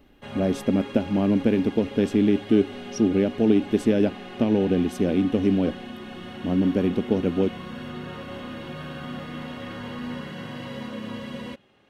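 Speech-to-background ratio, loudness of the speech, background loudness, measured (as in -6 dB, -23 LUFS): 14.0 dB, -23.0 LUFS, -37.0 LUFS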